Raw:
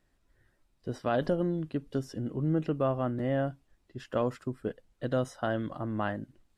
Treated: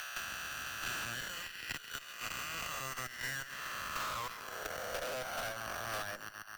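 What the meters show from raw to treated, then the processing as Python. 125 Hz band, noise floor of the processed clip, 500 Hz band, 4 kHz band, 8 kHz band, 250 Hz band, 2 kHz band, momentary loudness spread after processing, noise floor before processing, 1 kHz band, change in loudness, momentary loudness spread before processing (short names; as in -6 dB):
-19.0 dB, -50 dBFS, -14.0 dB, +9.0 dB, n/a, -23.5 dB, +5.5 dB, 4 LU, -72 dBFS, -3.5 dB, -7.5 dB, 10 LU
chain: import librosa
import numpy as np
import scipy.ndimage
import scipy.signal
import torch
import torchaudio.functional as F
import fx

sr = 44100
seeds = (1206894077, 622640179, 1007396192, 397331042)

y = fx.spec_swells(x, sr, rise_s=2.81)
y = fx.level_steps(y, sr, step_db=14)
y = fx.curve_eq(y, sr, hz=(130.0, 280.0, 1600.0), db=(0, -17, -1))
y = fx.echo_wet_highpass(y, sr, ms=134, feedback_pct=57, hz=1600.0, wet_db=-14.0)
y = np.repeat(scipy.signal.resample_poly(y, 1, 6), 6)[:len(y)]
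y = fx.peak_eq(y, sr, hz=8300.0, db=-5.0, octaves=0.57)
y = fx.filter_sweep_highpass(y, sr, from_hz=2500.0, to_hz=580.0, start_s=3.38, end_s=4.91, q=1.5)
y = fx.tube_stage(y, sr, drive_db=46.0, bias=0.8)
y = fx.band_squash(y, sr, depth_pct=100)
y = F.gain(torch.from_numpy(y), 11.5).numpy()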